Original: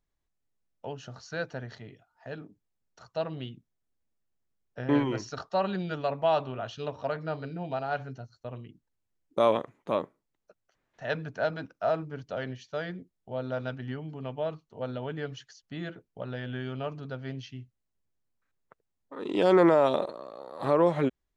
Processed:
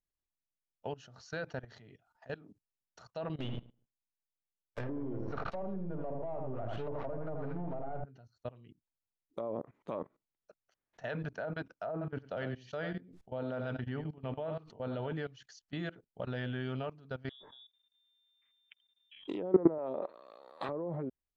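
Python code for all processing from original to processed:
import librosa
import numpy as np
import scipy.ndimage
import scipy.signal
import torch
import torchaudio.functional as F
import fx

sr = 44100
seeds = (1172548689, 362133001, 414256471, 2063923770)

y = fx.chain(x, sr, fx.halfwave_gain(db=-12.0),
    fx.leveller(passes=3),
    fx.echo_filtered(ms=81, feedback_pct=23, hz=3500.0, wet_db=-7.0), at=(3.4, 8.04))
y = fx.chain(y, sr, fx.high_shelf(hz=5900.0, db=-9.5),
    fx.echo_single(ms=90, db=-10.5),
    fx.sustainer(db_per_s=82.0), at=(11.92, 15.13))
y = fx.chain(y, sr, fx.freq_invert(carrier_hz=3600),
    fx.over_compress(threshold_db=-42.0, ratio=-1.0), at=(17.29, 19.28))
y = fx.chain(y, sr, fx.highpass(hz=350.0, slope=6),
    fx.peak_eq(hz=2500.0, db=7.5, octaves=1.5), at=(19.78, 20.69))
y = fx.env_lowpass_down(y, sr, base_hz=600.0, full_db=-21.0)
y = fx.level_steps(y, sr, step_db=19)
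y = y * librosa.db_to_amplitude(1.0)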